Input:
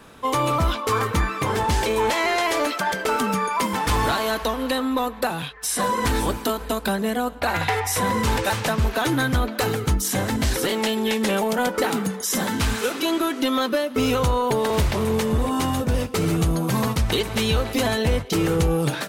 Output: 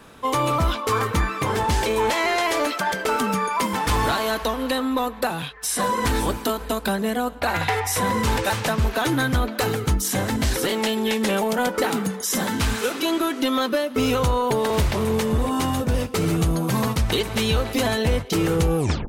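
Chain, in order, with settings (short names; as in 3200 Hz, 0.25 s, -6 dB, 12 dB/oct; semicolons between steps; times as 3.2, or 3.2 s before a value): tape stop at the end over 0.31 s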